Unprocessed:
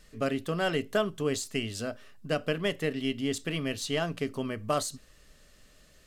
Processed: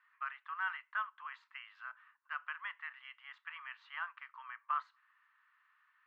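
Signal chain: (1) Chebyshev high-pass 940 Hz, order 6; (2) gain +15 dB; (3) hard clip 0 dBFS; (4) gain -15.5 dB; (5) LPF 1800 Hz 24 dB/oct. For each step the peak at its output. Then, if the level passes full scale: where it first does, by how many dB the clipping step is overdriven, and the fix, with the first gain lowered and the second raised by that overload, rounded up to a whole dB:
-20.5, -5.5, -5.5, -21.0, -25.0 dBFS; no overload

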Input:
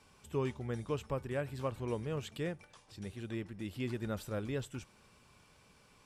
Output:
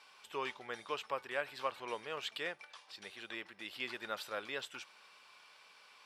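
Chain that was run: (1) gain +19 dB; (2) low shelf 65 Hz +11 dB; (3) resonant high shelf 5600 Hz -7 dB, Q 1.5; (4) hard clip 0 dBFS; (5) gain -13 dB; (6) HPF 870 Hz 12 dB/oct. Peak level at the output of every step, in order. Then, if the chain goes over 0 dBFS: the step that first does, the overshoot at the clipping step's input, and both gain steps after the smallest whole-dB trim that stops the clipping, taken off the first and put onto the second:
-3.0, -2.5, -2.5, -2.5, -15.5, -21.5 dBFS; no overload

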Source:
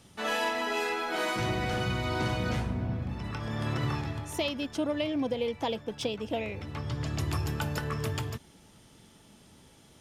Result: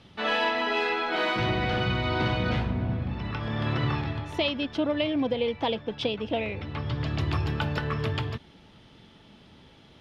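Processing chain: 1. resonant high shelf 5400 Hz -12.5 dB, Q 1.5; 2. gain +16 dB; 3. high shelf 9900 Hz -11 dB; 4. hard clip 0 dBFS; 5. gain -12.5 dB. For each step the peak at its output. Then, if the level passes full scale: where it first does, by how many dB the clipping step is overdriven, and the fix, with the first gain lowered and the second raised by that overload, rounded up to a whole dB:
-17.0, -1.0, -1.5, -1.5, -14.0 dBFS; no overload

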